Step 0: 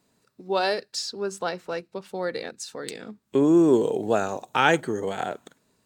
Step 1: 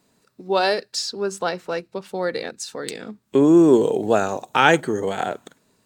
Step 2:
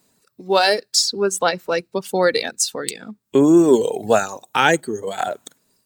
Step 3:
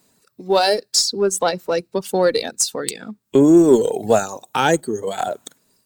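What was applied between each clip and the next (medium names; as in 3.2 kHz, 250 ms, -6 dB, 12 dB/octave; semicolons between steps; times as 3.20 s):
hum notches 60/120 Hz; trim +4.5 dB
treble shelf 6.1 kHz +10.5 dB; reverb removal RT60 1.5 s; level rider gain up to 11 dB; trim -1 dB
dynamic bell 2 kHz, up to -8 dB, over -34 dBFS, Q 0.86; in parallel at -11 dB: one-sided clip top -18 dBFS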